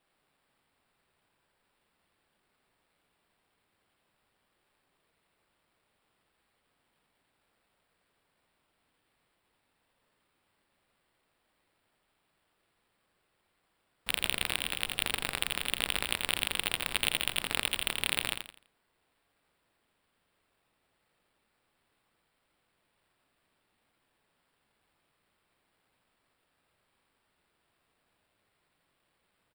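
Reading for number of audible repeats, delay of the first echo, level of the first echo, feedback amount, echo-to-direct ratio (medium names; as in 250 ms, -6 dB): 3, 84 ms, -6.0 dB, 32%, -5.5 dB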